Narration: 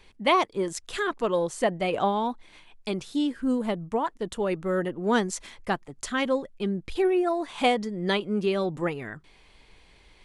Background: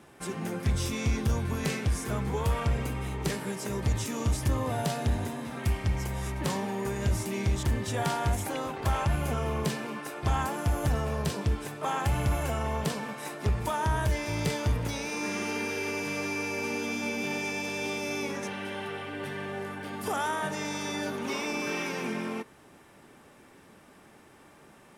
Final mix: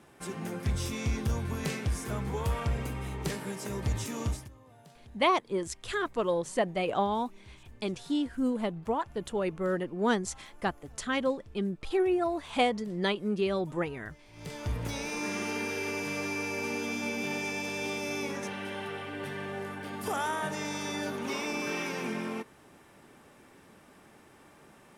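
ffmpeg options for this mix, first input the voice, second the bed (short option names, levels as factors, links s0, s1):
-filter_complex "[0:a]adelay=4950,volume=0.668[s0];[1:a]volume=11.9,afade=t=out:st=4.25:d=0.24:silence=0.0707946,afade=t=in:st=14.32:d=0.66:silence=0.0595662[s1];[s0][s1]amix=inputs=2:normalize=0"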